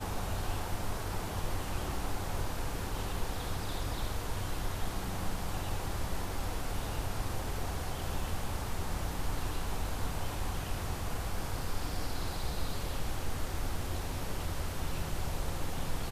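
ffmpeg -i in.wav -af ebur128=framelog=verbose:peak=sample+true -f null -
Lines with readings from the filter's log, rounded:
Integrated loudness:
  I:         -37.8 LUFS
  Threshold: -47.8 LUFS
Loudness range:
  LRA:         0.5 LU
  Threshold: -57.8 LUFS
  LRA low:   -38.1 LUFS
  LRA high:  -37.6 LUFS
Sample peak:
  Peak:      -20.8 dBFS
True peak:
  Peak:      -20.8 dBFS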